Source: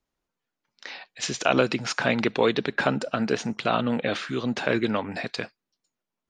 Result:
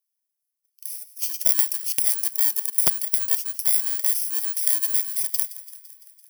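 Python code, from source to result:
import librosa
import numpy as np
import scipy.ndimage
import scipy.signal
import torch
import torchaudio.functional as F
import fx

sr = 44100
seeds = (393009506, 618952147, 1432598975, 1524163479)

p1 = fx.bit_reversed(x, sr, seeds[0], block=32)
p2 = fx.rider(p1, sr, range_db=4, speed_s=0.5)
p3 = np.diff(p2, prepend=0.0)
p4 = p3 + fx.echo_wet_highpass(p3, sr, ms=169, feedback_pct=66, hz=1400.0, wet_db=-16.5, dry=0)
p5 = fx.overflow_wrap(p4, sr, gain_db=7.0, at=(1.57, 3.05))
y = F.gain(torch.from_numpy(p5), 2.0).numpy()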